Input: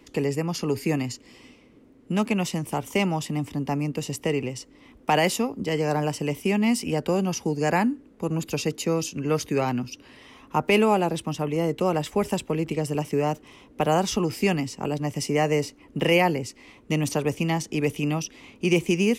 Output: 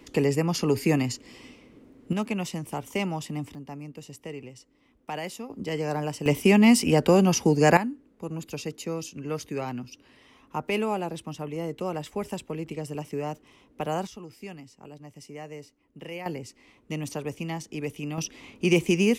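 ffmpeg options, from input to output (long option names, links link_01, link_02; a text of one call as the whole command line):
ffmpeg -i in.wav -af "asetnsamples=nb_out_samples=441:pad=0,asendcmd='2.13 volume volume -5dB;3.55 volume volume -13dB;5.5 volume volume -4.5dB;6.26 volume volume 5dB;7.77 volume volume -7.5dB;14.07 volume volume -18dB;16.26 volume volume -8dB;18.18 volume volume 0dB',volume=2dB" out.wav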